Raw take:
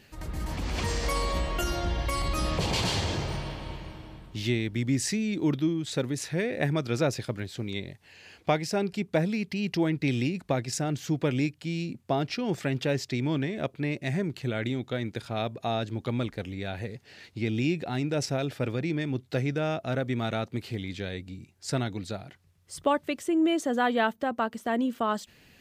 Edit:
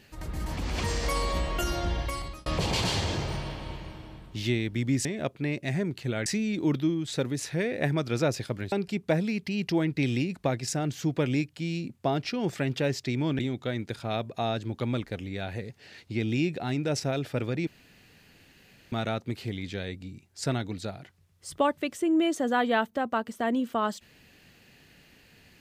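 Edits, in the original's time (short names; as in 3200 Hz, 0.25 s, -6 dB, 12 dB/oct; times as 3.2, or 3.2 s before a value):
1.95–2.46 fade out
7.51–8.77 cut
13.44–14.65 move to 5.05
18.93–20.18 room tone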